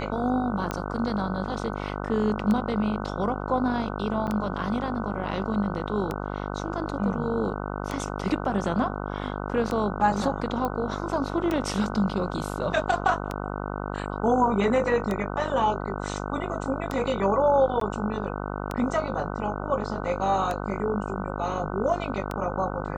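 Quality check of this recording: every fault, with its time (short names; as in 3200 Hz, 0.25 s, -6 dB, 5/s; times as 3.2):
buzz 50 Hz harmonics 30 -32 dBFS
tick 33 1/3 rpm -15 dBFS
4.27–4.28 gap 7.6 ms
10.65 pop -16 dBFS
17.8–17.81 gap 13 ms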